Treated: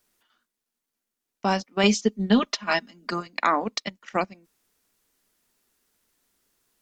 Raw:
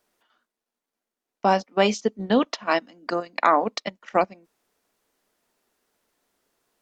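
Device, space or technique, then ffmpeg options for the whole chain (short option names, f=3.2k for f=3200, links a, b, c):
smiley-face EQ: -filter_complex "[0:a]asettb=1/sr,asplit=3[a][b][c];[a]atrim=end=1.834[d];[b]atrim=start=1.83:end=3.27,asetpts=PTS-STARTPTS,afade=t=in:d=0.004:c=qsin,afade=t=out:st=1.436:d=0.004:c=qsin,aecho=1:1:4.9:0.72,atrim=end_sample=63504[e];[c]atrim=start=3.266[f];[d][e]acrossfade=d=0.004:c1=hsin:c2=qsin[g];[g][f]acrossfade=d=0.004:c1=qsin:c2=hsin,lowshelf=f=120:g=6,equalizer=f=630:t=o:w=1.6:g=-7,highshelf=f=5.6k:g=6.5"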